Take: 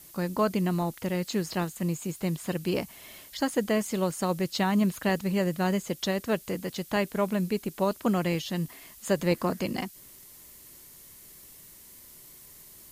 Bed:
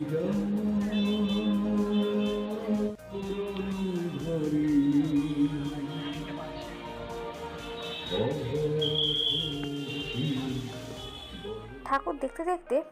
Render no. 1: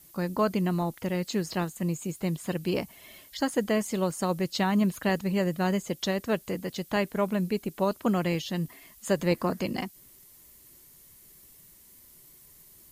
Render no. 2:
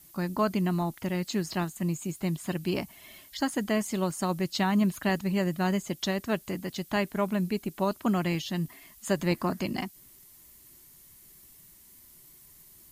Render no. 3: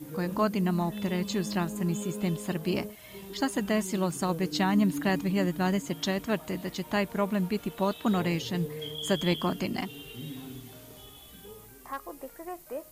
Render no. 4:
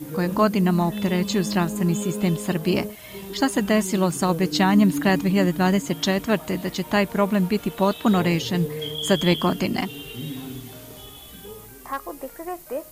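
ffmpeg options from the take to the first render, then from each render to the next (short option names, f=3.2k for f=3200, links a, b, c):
-af "afftdn=nr=6:nf=-51"
-af "equalizer=f=490:t=o:w=0.26:g=-11"
-filter_complex "[1:a]volume=-10dB[a];[0:a][a]amix=inputs=2:normalize=0"
-af "volume=7.5dB"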